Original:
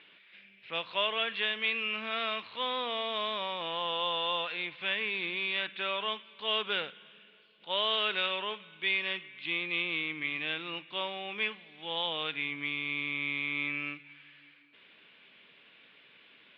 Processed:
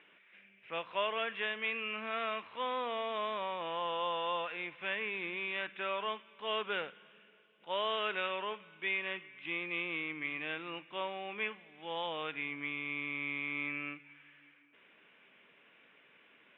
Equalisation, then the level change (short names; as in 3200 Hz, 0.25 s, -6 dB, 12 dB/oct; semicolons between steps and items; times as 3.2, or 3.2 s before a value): running mean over 10 samples; low shelf 160 Hz -8 dB; 0.0 dB